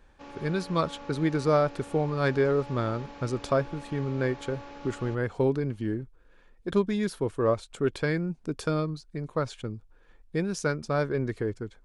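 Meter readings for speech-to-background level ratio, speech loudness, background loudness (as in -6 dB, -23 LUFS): 16.0 dB, -29.0 LUFS, -45.0 LUFS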